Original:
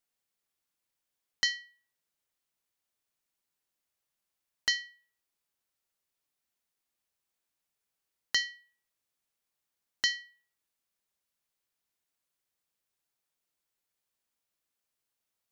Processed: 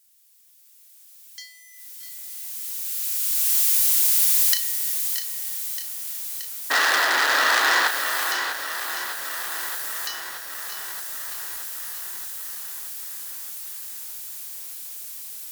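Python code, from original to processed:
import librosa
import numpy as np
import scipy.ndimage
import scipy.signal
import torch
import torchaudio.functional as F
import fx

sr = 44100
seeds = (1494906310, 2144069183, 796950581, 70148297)

p1 = x + 0.5 * 10.0 ** (-34.5 / 20.0) * np.sign(x)
p2 = fx.doppler_pass(p1, sr, speed_mps=12, closest_m=4.0, pass_at_s=4.38)
p3 = fx.recorder_agc(p2, sr, target_db=-16.5, rise_db_per_s=7.7, max_gain_db=30)
p4 = scipy.signal.sosfilt(scipy.signal.butter(4, 72.0, 'highpass', fs=sr, output='sos'), p3)
p5 = fx.peak_eq(p4, sr, hz=94.0, db=6.5, octaves=2.5)
p6 = fx.notch(p5, sr, hz=1300.0, q=15.0)
p7 = fx.spec_paint(p6, sr, seeds[0], shape='noise', start_s=6.7, length_s=1.18, low_hz=250.0, high_hz=2000.0, level_db=-3.0)
p8 = 10.0 ** (-3.5 / 20.0) * np.tanh(p7 / 10.0 ** (-3.5 / 20.0))
p9 = np.diff(p8, prepend=0.0)
p10 = fx.doubler(p9, sr, ms=34.0, db=-9.0)
p11 = p10 + fx.echo_single(p10, sr, ms=650, db=-9.5, dry=0)
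p12 = fx.echo_crushed(p11, sr, ms=625, feedback_pct=80, bits=7, wet_db=-11.0)
y = p12 * 10.0 ** (1.0 / 20.0)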